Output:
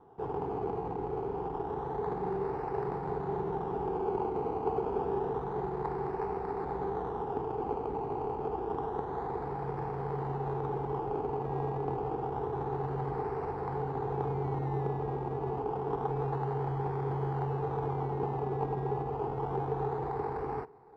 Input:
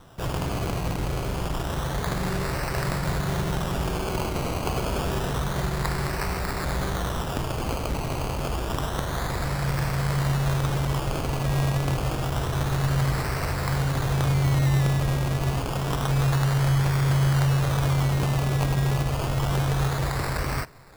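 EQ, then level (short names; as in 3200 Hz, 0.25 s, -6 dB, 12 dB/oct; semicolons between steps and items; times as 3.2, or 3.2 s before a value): double band-pass 590 Hz, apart 0.9 oct; tilt -2.5 dB/oct; +2.5 dB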